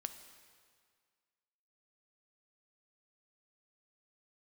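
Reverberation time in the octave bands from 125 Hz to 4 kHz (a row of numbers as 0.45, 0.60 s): 1.9, 1.8, 1.9, 1.9, 1.8, 1.7 s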